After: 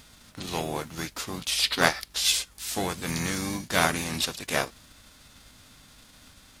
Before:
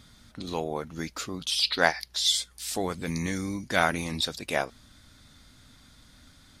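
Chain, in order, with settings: formants flattened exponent 0.6; mains buzz 50 Hz, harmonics 6, -63 dBFS -5 dB/octave; harmony voices -5 st -7 dB

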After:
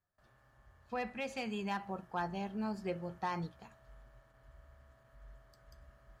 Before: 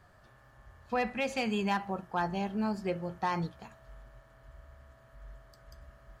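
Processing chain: gate with hold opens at -50 dBFS; gain riding 0.5 s; trim -6 dB

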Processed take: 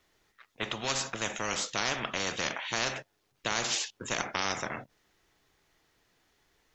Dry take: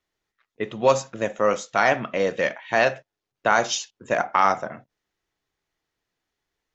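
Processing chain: spectrum-flattening compressor 4:1; trim -7.5 dB

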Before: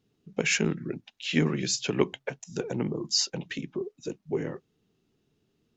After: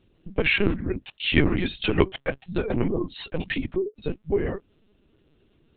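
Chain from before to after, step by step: in parallel at +2.5 dB: compression, threshold -36 dBFS, peak gain reduction 17.5 dB; on the sum: LPC vocoder at 8 kHz pitch kept; trim +3 dB

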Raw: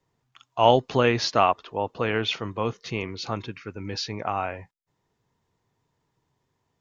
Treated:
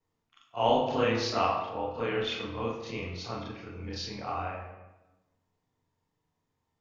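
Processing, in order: short-time spectra conjugated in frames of 87 ms; on a send: reverberation RT60 1.1 s, pre-delay 4 ms, DRR 1 dB; on the sum: trim -5.5 dB

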